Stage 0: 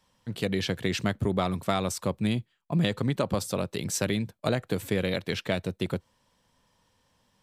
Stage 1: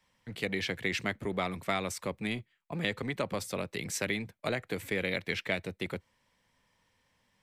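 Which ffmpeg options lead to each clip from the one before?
-filter_complex "[0:a]equalizer=f=2100:w=2.4:g=10.5,acrossover=split=220|2600[s0][s1][s2];[s0]asoftclip=type=hard:threshold=0.0158[s3];[s3][s1][s2]amix=inputs=3:normalize=0,volume=0.531"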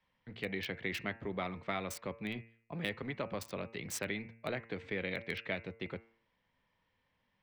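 -filter_complex "[0:a]acrossover=split=4400[s0][s1];[s0]bandreject=f=113.9:t=h:w=4,bandreject=f=227.8:t=h:w=4,bandreject=f=341.7:t=h:w=4,bandreject=f=455.6:t=h:w=4,bandreject=f=569.5:t=h:w=4,bandreject=f=683.4:t=h:w=4,bandreject=f=797.3:t=h:w=4,bandreject=f=911.2:t=h:w=4,bandreject=f=1025.1:t=h:w=4,bandreject=f=1139:t=h:w=4,bandreject=f=1252.9:t=h:w=4,bandreject=f=1366.8:t=h:w=4,bandreject=f=1480.7:t=h:w=4,bandreject=f=1594.6:t=h:w=4,bandreject=f=1708.5:t=h:w=4,bandreject=f=1822.4:t=h:w=4,bandreject=f=1936.3:t=h:w=4,bandreject=f=2050.2:t=h:w=4,bandreject=f=2164.1:t=h:w=4,bandreject=f=2278:t=h:w=4,bandreject=f=2391.9:t=h:w=4,bandreject=f=2505.8:t=h:w=4,bandreject=f=2619.7:t=h:w=4,bandreject=f=2733.6:t=h:w=4,bandreject=f=2847.5:t=h:w=4[s2];[s1]acrusher=bits=5:mix=0:aa=0.000001[s3];[s2][s3]amix=inputs=2:normalize=0,volume=0.562"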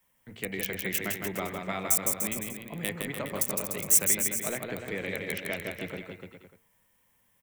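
-filter_complex "[0:a]bandreject=f=60:t=h:w=6,bandreject=f=120:t=h:w=6,aexciter=amount=7:drive=7.9:freq=6400,asplit=2[s0][s1];[s1]aecho=0:1:160|296|411.6|509.9|593.4:0.631|0.398|0.251|0.158|0.1[s2];[s0][s2]amix=inputs=2:normalize=0,volume=1.33"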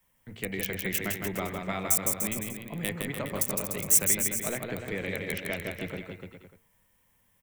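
-af "lowshelf=f=110:g=8.5"

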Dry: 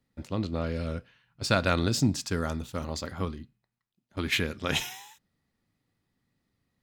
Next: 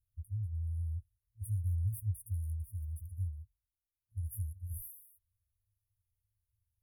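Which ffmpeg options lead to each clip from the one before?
-af "afftfilt=real='re*(1-between(b*sr/4096,110,9300))':imag='im*(1-between(b*sr/4096,110,9300))':win_size=4096:overlap=0.75"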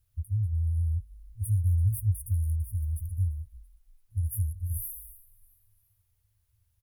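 -filter_complex "[0:a]asplit=2[s0][s1];[s1]acompressor=threshold=0.00501:ratio=6,volume=0.708[s2];[s0][s2]amix=inputs=2:normalize=0,asplit=4[s3][s4][s5][s6];[s4]adelay=337,afreqshift=-33,volume=0.0841[s7];[s5]adelay=674,afreqshift=-66,volume=0.038[s8];[s6]adelay=1011,afreqshift=-99,volume=0.017[s9];[s3][s7][s8][s9]amix=inputs=4:normalize=0,volume=2.37"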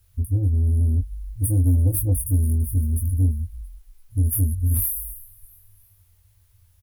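-filter_complex "[0:a]aeval=exprs='0.15*(cos(1*acos(clip(val(0)/0.15,-1,1)))-cos(1*PI/2))+0.015*(cos(5*acos(clip(val(0)/0.15,-1,1)))-cos(5*PI/2))+0.00168*(cos(8*acos(clip(val(0)/0.15,-1,1)))-cos(8*PI/2))':c=same,acrossover=split=150[s0][s1];[s0]asoftclip=type=tanh:threshold=0.0355[s2];[s2][s1]amix=inputs=2:normalize=0,asplit=2[s3][s4];[s4]adelay=22,volume=0.631[s5];[s3][s5]amix=inputs=2:normalize=0,volume=2.66"

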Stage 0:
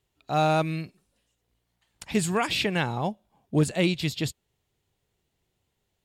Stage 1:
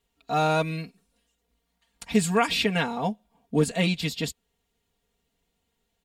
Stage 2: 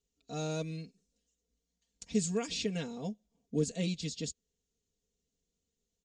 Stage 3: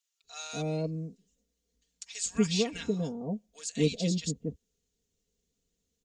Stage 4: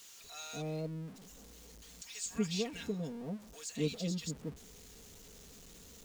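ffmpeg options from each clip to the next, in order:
-af "aecho=1:1:4.3:0.95,volume=0.841"
-af "firequalizer=gain_entry='entry(500,0);entry(810,-15);entry(6500,9);entry(13000,-30)':delay=0.05:min_phase=1,volume=0.376"
-filter_complex "[0:a]acrossover=split=980[s0][s1];[s0]adelay=240[s2];[s2][s1]amix=inputs=2:normalize=0,volume=1.68"
-af "aeval=exprs='val(0)+0.5*0.00944*sgn(val(0))':c=same,volume=0.398"

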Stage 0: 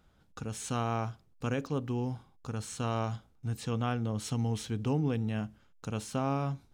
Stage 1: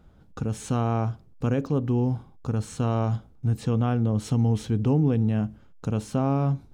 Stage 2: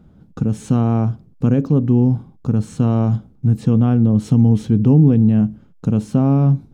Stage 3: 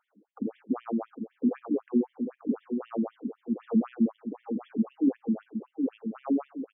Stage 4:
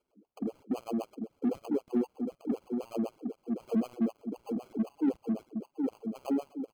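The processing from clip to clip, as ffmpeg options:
-filter_complex "[0:a]tiltshelf=f=970:g=6,asplit=2[s0][s1];[s1]alimiter=level_in=1.12:limit=0.0631:level=0:latency=1:release=114,volume=0.891,volume=1[s2];[s0][s2]amix=inputs=2:normalize=0"
-af "equalizer=f=190:t=o:w=2.1:g=12.5"
-filter_complex "[0:a]asplit=2[s0][s1];[s1]adelay=759,lowpass=f=1300:p=1,volume=0.501,asplit=2[s2][s3];[s3]adelay=759,lowpass=f=1300:p=1,volume=0.34,asplit=2[s4][s5];[s5]adelay=759,lowpass=f=1300:p=1,volume=0.34,asplit=2[s6][s7];[s7]adelay=759,lowpass=f=1300:p=1,volume=0.34[s8];[s0][s2][s4][s6][s8]amix=inputs=5:normalize=0,acrossover=split=2700[s9][s10];[s10]acompressor=threshold=0.00282:ratio=4:attack=1:release=60[s11];[s9][s11]amix=inputs=2:normalize=0,afftfilt=real='re*between(b*sr/1024,260*pow(2600/260,0.5+0.5*sin(2*PI*3.9*pts/sr))/1.41,260*pow(2600/260,0.5+0.5*sin(2*PI*3.9*pts/sr))*1.41)':imag='im*between(b*sr/1024,260*pow(2600/260,0.5+0.5*sin(2*PI*3.9*pts/sr))/1.41,260*pow(2600/260,0.5+0.5*sin(2*PI*3.9*pts/sr))*1.41)':win_size=1024:overlap=0.75,volume=0.562"
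-filter_complex "[0:a]acrossover=split=180|310|850[s0][s1][s2][s3];[s1]asoftclip=type=tanh:threshold=0.015[s4];[s3]acrusher=samples=24:mix=1:aa=0.000001[s5];[s0][s4][s2][s5]amix=inputs=4:normalize=0"

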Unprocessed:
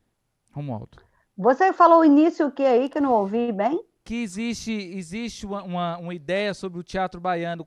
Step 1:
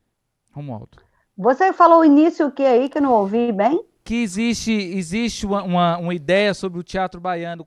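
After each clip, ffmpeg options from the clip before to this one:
-af "dynaudnorm=f=310:g=9:m=3.76"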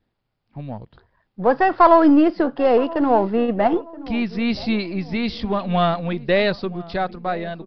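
-filter_complex "[0:a]aeval=exprs='if(lt(val(0),0),0.708*val(0),val(0))':c=same,asplit=2[s0][s1];[s1]adelay=976,lowpass=f=860:p=1,volume=0.133,asplit=2[s2][s3];[s3]adelay=976,lowpass=f=860:p=1,volume=0.48,asplit=2[s4][s5];[s5]adelay=976,lowpass=f=860:p=1,volume=0.48,asplit=2[s6][s7];[s7]adelay=976,lowpass=f=860:p=1,volume=0.48[s8];[s0][s2][s4][s6][s8]amix=inputs=5:normalize=0,aresample=11025,aresample=44100"

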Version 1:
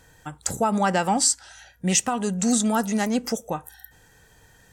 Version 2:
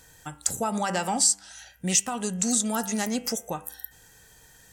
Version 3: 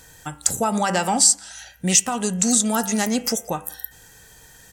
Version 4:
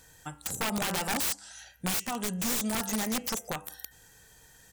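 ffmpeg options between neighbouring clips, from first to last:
-af "highshelf=f=3600:g=10,bandreject=f=98.27:t=h:w=4,bandreject=f=196.54:t=h:w=4,bandreject=f=294.81:t=h:w=4,bandreject=f=393.08:t=h:w=4,bandreject=f=491.35:t=h:w=4,bandreject=f=589.62:t=h:w=4,bandreject=f=687.89:t=h:w=4,bandreject=f=786.16:t=h:w=4,bandreject=f=884.43:t=h:w=4,bandreject=f=982.7:t=h:w=4,bandreject=f=1080.97:t=h:w=4,bandreject=f=1179.24:t=h:w=4,bandreject=f=1277.51:t=h:w=4,bandreject=f=1375.78:t=h:w=4,bandreject=f=1474.05:t=h:w=4,bandreject=f=1572.32:t=h:w=4,bandreject=f=1670.59:t=h:w=4,bandreject=f=1768.86:t=h:w=4,bandreject=f=1867.13:t=h:w=4,bandreject=f=1965.4:t=h:w=4,bandreject=f=2063.67:t=h:w=4,bandreject=f=2161.94:t=h:w=4,bandreject=f=2260.21:t=h:w=4,bandreject=f=2358.48:t=h:w=4,bandreject=f=2456.75:t=h:w=4,bandreject=f=2555.02:t=h:w=4,bandreject=f=2653.29:t=h:w=4,bandreject=f=2751.56:t=h:w=4,bandreject=f=2849.83:t=h:w=4,bandreject=f=2948.1:t=h:w=4,bandreject=f=3046.37:t=h:w=4,bandreject=f=3144.64:t=h:w=4,bandreject=f=3242.91:t=h:w=4,acompressor=threshold=0.0501:ratio=1.5,volume=0.75"
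-filter_complex "[0:a]asplit=2[s0][s1];[s1]adelay=174.9,volume=0.0398,highshelf=f=4000:g=-3.94[s2];[s0][s2]amix=inputs=2:normalize=0,volume=2"
-af "aeval=exprs='(mod(5.96*val(0)+1,2)-1)/5.96':c=same,volume=0.376"

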